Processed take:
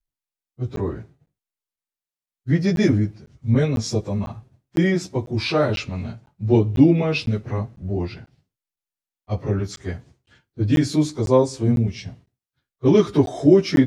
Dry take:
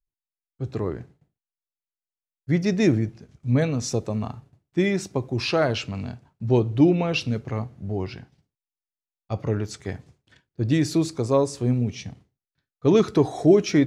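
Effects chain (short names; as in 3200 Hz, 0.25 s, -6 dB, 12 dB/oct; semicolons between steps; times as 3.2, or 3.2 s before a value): pitch shift by moving bins -1 st; crackling interface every 0.50 s, samples 512, zero, from 0.76; gain +4.5 dB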